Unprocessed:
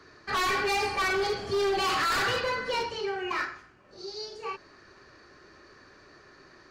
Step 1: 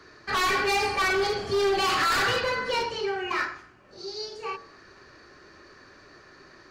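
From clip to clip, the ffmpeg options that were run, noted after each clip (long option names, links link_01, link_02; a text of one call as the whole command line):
ffmpeg -i in.wav -af "bandreject=frequency=45.67:width_type=h:width=4,bandreject=frequency=91.34:width_type=h:width=4,bandreject=frequency=137.01:width_type=h:width=4,bandreject=frequency=182.68:width_type=h:width=4,bandreject=frequency=228.35:width_type=h:width=4,bandreject=frequency=274.02:width_type=h:width=4,bandreject=frequency=319.69:width_type=h:width=4,bandreject=frequency=365.36:width_type=h:width=4,bandreject=frequency=411.03:width_type=h:width=4,bandreject=frequency=456.7:width_type=h:width=4,bandreject=frequency=502.37:width_type=h:width=4,bandreject=frequency=548.04:width_type=h:width=4,bandreject=frequency=593.71:width_type=h:width=4,bandreject=frequency=639.38:width_type=h:width=4,bandreject=frequency=685.05:width_type=h:width=4,bandreject=frequency=730.72:width_type=h:width=4,bandreject=frequency=776.39:width_type=h:width=4,bandreject=frequency=822.06:width_type=h:width=4,bandreject=frequency=867.73:width_type=h:width=4,bandreject=frequency=913.4:width_type=h:width=4,bandreject=frequency=959.07:width_type=h:width=4,bandreject=frequency=1004.74:width_type=h:width=4,bandreject=frequency=1050.41:width_type=h:width=4,bandreject=frequency=1096.08:width_type=h:width=4,bandreject=frequency=1141.75:width_type=h:width=4,bandreject=frequency=1187.42:width_type=h:width=4,bandreject=frequency=1233.09:width_type=h:width=4,bandreject=frequency=1278.76:width_type=h:width=4,volume=3dB" out.wav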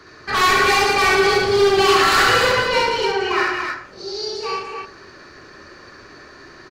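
ffmpeg -i in.wav -af "aecho=1:1:67.06|180.8|291.5:0.891|0.501|0.631,volume=5.5dB" out.wav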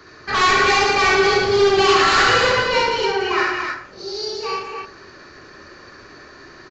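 ffmpeg -i in.wav -af "aresample=16000,aresample=44100" out.wav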